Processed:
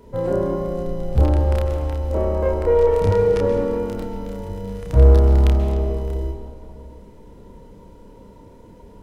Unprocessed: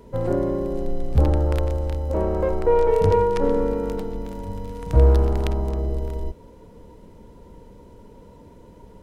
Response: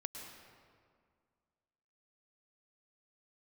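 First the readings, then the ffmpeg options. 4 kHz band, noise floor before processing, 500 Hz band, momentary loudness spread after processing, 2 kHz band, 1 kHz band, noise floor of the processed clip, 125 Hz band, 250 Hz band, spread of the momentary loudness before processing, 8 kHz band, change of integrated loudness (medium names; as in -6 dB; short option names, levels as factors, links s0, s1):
+1.5 dB, -47 dBFS, +2.0 dB, 16 LU, +1.5 dB, -1.5 dB, -45 dBFS, +4.0 dB, +1.0 dB, 15 LU, no reading, +3.0 dB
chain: -filter_complex "[0:a]asplit=2[s0][s1];[1:a]atrim=start_sample=2205,adelay=30[s2];[s1][s2]afir=irnorm=-1:irlink=0,volume=1.12[s3];[s0][s3]amix=inputs=2:normalize=0,volume=0.891"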